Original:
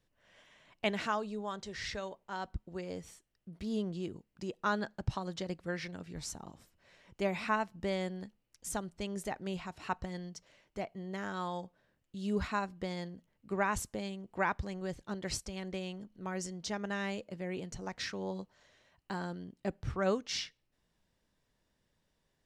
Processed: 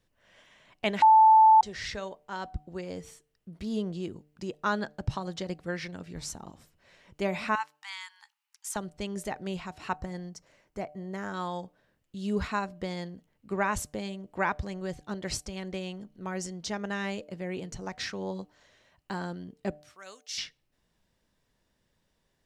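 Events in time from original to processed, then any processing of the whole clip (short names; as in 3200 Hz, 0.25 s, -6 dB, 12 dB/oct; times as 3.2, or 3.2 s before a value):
1.02–1.61 bleep 878 Hz -17 dBFS
7.55–8.76 brick-wall FIR high-pass 790 Hz
9.96–11.34 bell 3300 Hz -7.5 dB 0.96 oct
19.82–20.38 differentiator
whole clip: de-hum 149.3 Hz, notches 5; gain +3.5 dB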